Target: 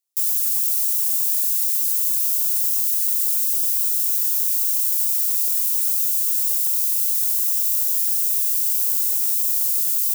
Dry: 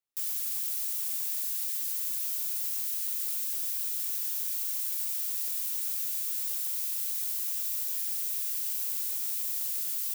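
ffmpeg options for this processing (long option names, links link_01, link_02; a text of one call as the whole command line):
ffmpeg -i in.wav -af "highpass=130,bass=frequency=250:gain=-2,treble=frequency=4000:gain=12" out.wav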